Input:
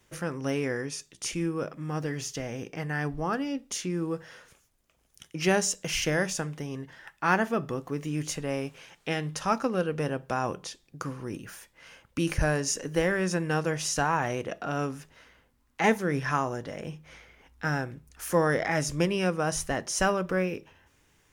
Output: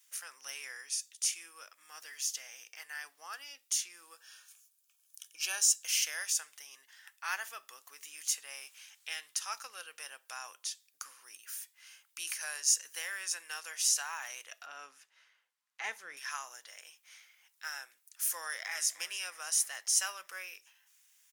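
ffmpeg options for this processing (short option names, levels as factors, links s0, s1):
-filter_complex "[0:a]asettb=1/sr,asplit=3[s0][s1][s2];[s0]atrim=end=4.144[s3];[s1]atrim=start=4.14:end=5.85,asetpts=PTS-STARTPTS,afade=t=in:d=0.004:c=qsin,afade=t=out:st=1.706:d=0.004:c=qsin,asuperstop=centerf=2000:order=12:qfactor=6.2[s4];[s2]atrim=start=5.846[s5];[s3][s4]acrossfade=d=0.004:c1=hsin:c2=qsin[s6];[s6][s5]acrossfade=d=0.004:c1=qsin:c2=hsin,asettb=1/sr,asplit=3[s7][s8][s9];[s7]atrim=end=14.664[s10];[s8]atrim=start=14.66:end=16.17,asetpts=PTS-STARTPTS,afade=t=in:d=0.004:c=qsin,afade=t=out:st=1.506:d=0.004:c=qsin,aemphasis=mode=reproduction:type=riaa[s11];[s9]atrim=start=16.166[s12];[s10][s11]acrossfade=d=0.004:c1=hsin:c2=qsin[s13];[s13][s12]acrossfade=d=0.004:c1=qsin:c2=hsin,asplit=2[s14][s15];[s15]afade=t=in:st=18.35:d=0.01,afade=t=out:st=18.92:d=0.01,aecho=0:1:300|600|900|1200|1500|1800:0.149624|0.0897741|0.0538645|0.0323187|0.0193912|0.0116347[s16];[s14][s16]amix=inputs=2:normalize=0,highpass=940,aderivative,volume=1.58"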